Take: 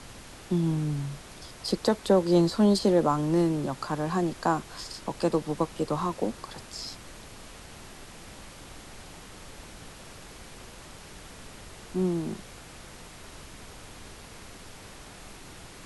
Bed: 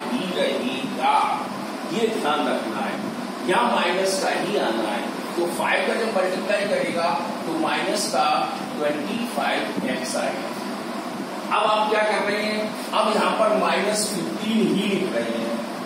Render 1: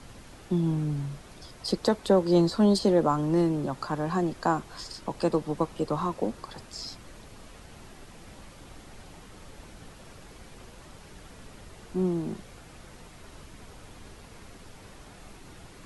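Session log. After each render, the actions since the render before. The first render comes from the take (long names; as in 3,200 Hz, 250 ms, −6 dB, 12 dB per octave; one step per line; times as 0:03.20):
broadband denoise 6 dB, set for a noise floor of −47 dBFS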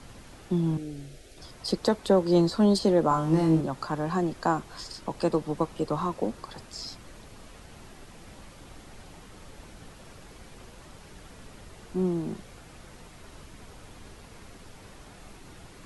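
0:00.77–0:01.38: phaser with its sweep stopped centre 420 Hz, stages 4
0:03.09–0:03.61: flutter between parallel walls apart 3.2 metres, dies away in 0.3 s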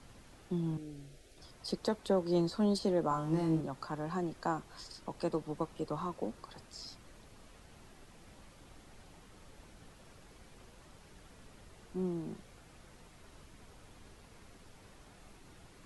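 level −9 dB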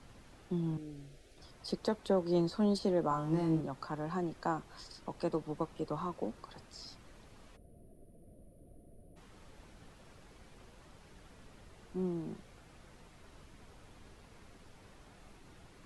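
0:07.56–0:09.17: gain on a spectral selection 720–8,900 Hz −27 dB
high-shelf EQ 6,000 Hz −5.5 dB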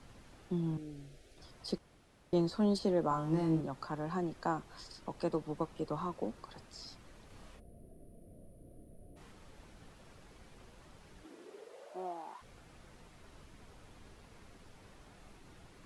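0:01.78–0:02.33: fill with room tone
0:07.27–0:09.32: double-tracking delay 32 ms −2 dB
0:11.23–0:12.41: high-pass with resonance 290 Hz → 1,000 Hz, resonance Q 8.8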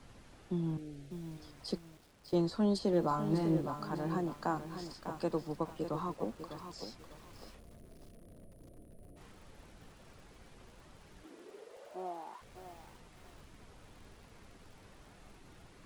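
feedback echo at a low word length 600 ms, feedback 35%, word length 9 bits, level −9 dB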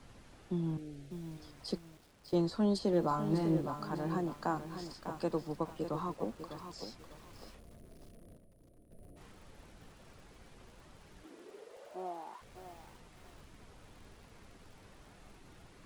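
0:08.37–0:08.91: clip gain −7 dB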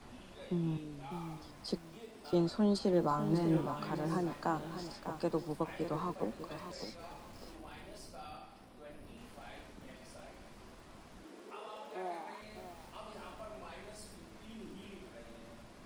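mix in bed −29.5 dB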